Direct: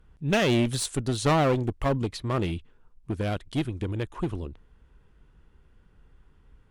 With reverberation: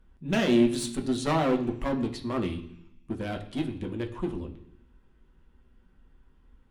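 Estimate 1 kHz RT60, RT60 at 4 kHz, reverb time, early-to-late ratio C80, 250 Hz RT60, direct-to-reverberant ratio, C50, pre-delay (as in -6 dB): 0.70 s, 1.2 s, 0.70 s, 14.0 dB, 0.95 s, 2.0 dB, 11.5 dB, 3 ms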